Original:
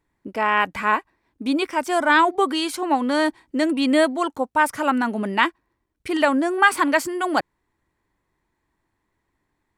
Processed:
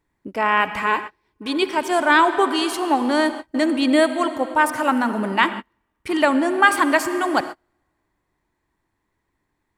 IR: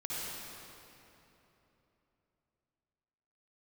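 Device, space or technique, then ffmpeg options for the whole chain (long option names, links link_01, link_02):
keyed gated reverb: -filter_complex "[0:a]asettb=1/sr,asplit=3[link_01][link_02][link_03];[link_01]atrim=end=0.864[link_04];[link_02]atrim=start=0.86:end=1.67,asetpts=PTS-STARTPTS,afade=type=in:duration=0.004:curve=qsin,afade=type=out:start_time=0.806:duration=0.004:curve=qsin,equalizer=frequency=250:width_type=o:width=0.33:gain=-10,equalizer=frequency=400:width_type=o:width=0.33:gain=6,equalizer=frequency=630:width_type=o:width=0.33:gain=-7,equalizer=frequency=1250:width_type=o:width=0.33:gain=-8,equalizer=frequency=3150:width_type=o:width=0.33:gain=5,equalizer=frequency=5000:width_type=o:width=0.33:gain=5[link_05];[link_03]atrim=start=1.666[link_06];[link_04][link_05]acrossfade=duration=0.004:curve1=hsin:curve2=qsin[link_07];[link_07][link_06]acrossfade=duration=0.004:curve1=qsin:curve2=hsin,asplit=3[link_08][link_09][link_10];[1:a]atrim=start_sample=2205[link_11];[link_09][link_11]afir=irnorm=-1:irlink=0[link_12];[link_10]apad=whole_len=431111[link_13];[link_12][link_13]sidechaingate=range=-39dB:threshold=-34dB:ratio=16:detection=peak,volume=-12dB[link_14];[link_08][link_14]amix=inputs=2:normalize=0"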